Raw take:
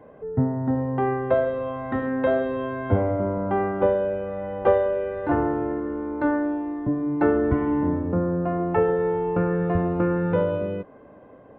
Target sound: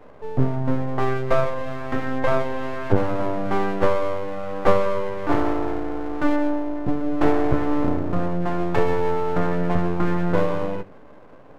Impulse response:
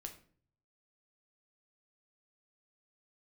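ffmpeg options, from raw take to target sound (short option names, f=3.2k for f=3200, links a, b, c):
-filter_complex "[0:a]aeval=exprs='max(val(0),0)':c=same,bandreject=f=73.54:t=h:w=4,bandreject=f=147.08:t=h:w=4,bandreject=f=220.62:t=h:w=4,asplit=2[a][b];[1:a]atrim=start_sample=2205,asetrate=48510,aresample=44100[c];[b][c]afir=irnorm=-1:irlink=0,volume=-4.5dB[d];[a][d]amix=inputs=2:normalize=0,volume=2.5dB"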